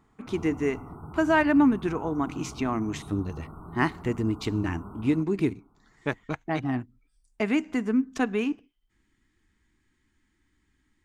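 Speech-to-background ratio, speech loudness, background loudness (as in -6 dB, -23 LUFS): 15.5 dB, -27.5 LUFS, -43.0 LUFS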